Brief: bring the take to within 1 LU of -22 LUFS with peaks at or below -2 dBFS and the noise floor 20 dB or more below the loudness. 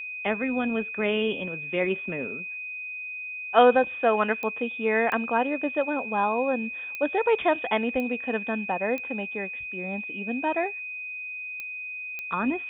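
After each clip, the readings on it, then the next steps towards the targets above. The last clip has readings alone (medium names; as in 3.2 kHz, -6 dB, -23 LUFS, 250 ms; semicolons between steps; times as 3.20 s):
clicks found 7; steady tone 2.5 kHz; tone level -33 dBFS; loudness -27.0 LUFS; peak level -6.0 dBFS; loudness target -22.0 LUFS
-> de-click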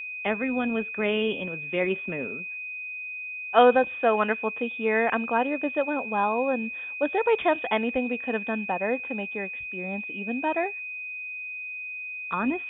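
clicks found 0; steady tone 2.5 kHz; tone level -33 dBFS
-> band-stop 2.5 kHz, Q 30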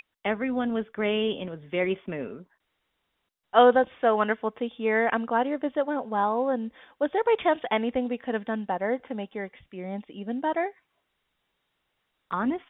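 steady tone not found; loudness -27.0 LUFS; peak level -6.0 dBFS; loudness target -22.0 LUFS
-> trim +5 dB; peak limiter -2 dBFS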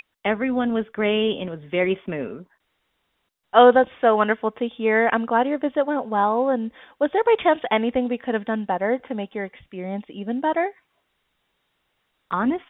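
loudness -22.0 LUFS; peak level -2.0 dBFS; noise floor -73 dBFS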